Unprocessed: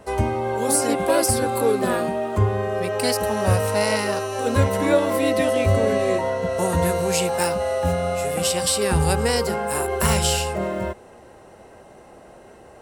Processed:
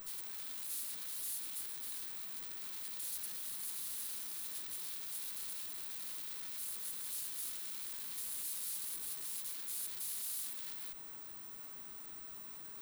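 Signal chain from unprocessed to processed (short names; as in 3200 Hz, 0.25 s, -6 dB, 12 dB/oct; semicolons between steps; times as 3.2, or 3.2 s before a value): careless resampling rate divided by 2×, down none, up zero stuff; compressor 6:1, threshold -17 dBFS, peak gain reduction 9 dB; pre-emphasis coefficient 0.97; wrapped overs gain 19.5 dB; limiter -28 dBFS, peak gain reduction 8.5 dB; tube stage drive 43 dB, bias 0.7; fifteen-band EQ 100 Hz -11 dB, 630 Hz -10 dB, 4000 Hz +8 dB, 10000 Hz +9 dB; gain +1.5 dB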